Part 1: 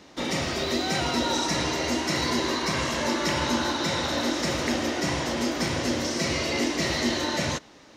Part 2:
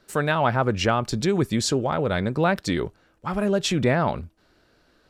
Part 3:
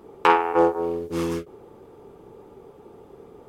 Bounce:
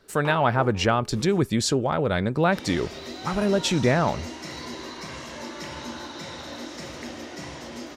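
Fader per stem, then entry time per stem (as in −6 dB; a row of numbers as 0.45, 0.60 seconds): −10.5, 0.0, −17.0 decibels; 2.35, 0.00, 0.00 seconds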